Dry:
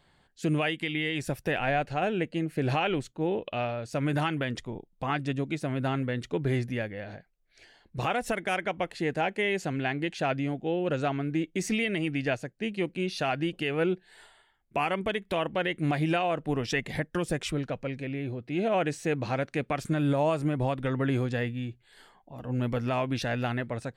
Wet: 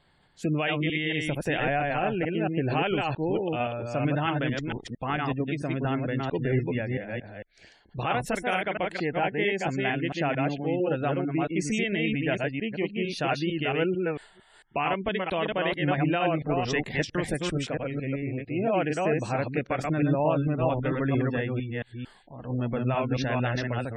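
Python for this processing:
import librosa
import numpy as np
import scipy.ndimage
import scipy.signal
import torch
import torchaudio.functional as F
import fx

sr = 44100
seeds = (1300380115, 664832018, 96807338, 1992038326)

y = fx.reverse_delay(x, sr, ms=225, wet_db=-2)
y = fx.spec_gate(y, sr, threshold_db=-30, keep='strong')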